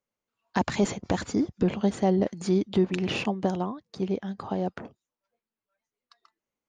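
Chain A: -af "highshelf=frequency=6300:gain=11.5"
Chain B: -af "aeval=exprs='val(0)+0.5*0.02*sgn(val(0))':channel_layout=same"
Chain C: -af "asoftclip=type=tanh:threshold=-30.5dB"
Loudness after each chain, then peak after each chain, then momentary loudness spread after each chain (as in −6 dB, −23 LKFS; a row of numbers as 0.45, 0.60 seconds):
−27.5, −26.5, −36.0 LKFS; −11.0, −12.0, −30.5 dBFS; 8, 16, 5 LU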